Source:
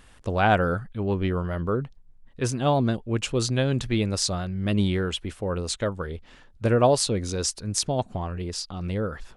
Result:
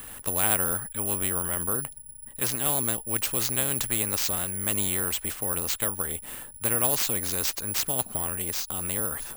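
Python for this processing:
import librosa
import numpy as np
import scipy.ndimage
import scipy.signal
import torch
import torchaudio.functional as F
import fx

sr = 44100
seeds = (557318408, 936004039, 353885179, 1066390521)

y = fx.high_shelf(x, sr, hz=5200.0, db=-9.0)
y = (np.kron(y[::4], np.eye(4)[0]) * 4)[:len(y)]
y = fx.spectral_comp(y, sr, ratio=2.0)
y = y * 10.0 ** (-6.0 / 20.0)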